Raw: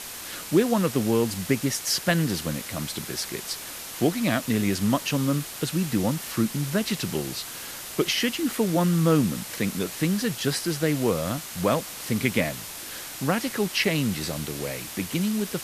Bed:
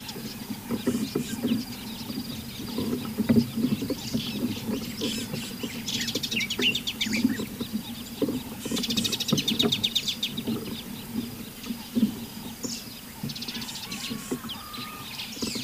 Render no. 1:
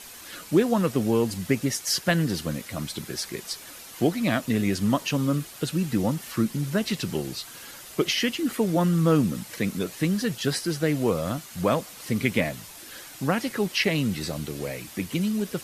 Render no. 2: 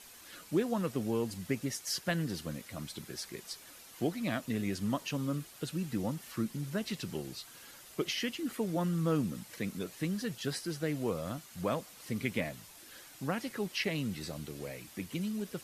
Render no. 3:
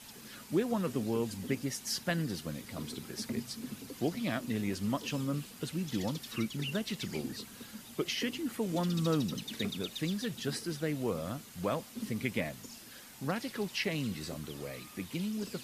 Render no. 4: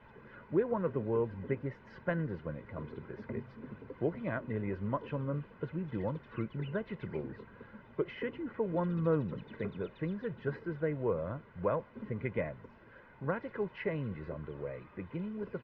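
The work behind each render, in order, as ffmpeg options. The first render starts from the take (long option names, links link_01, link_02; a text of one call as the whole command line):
ffmpeg -i in.wav -af "afftdn=noise_reduction=8:noise_floor=-38" out.wav
ffmpeg -i in.wav -af "volume=-10dB" out.wav
ffmpeg -i in.wav -i bed.wav -filter_complex "[1:a]volume=-17dB[link_01];[0:a][link_01]amix=inputs=2:normalize=0" out.wav
ffmpeg -i in.wav -af "lowpass=frequency=1800:width=0.5412,lowpass=frequency=1800:width=1.3066,aecho=1:1:2:0.54" out.wav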